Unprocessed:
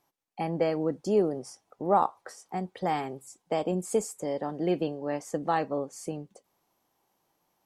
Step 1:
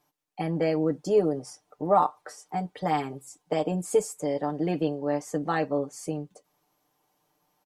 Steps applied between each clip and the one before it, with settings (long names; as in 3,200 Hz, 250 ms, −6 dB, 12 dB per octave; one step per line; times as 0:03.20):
comb filter 6.7 ms, depth 75%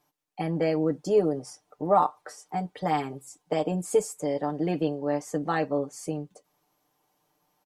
no processing that can be heard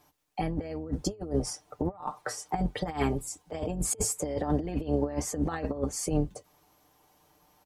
sub-octave generator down 2 octaves, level −4 dB
compressor whose output falls as the input rises −31 dBFS, ratio −0.5
level +2 dB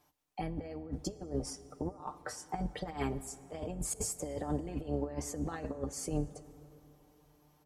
dense smooth reverb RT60 3.5 s, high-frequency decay 0.45×, DRR 15 dB
level −7 dB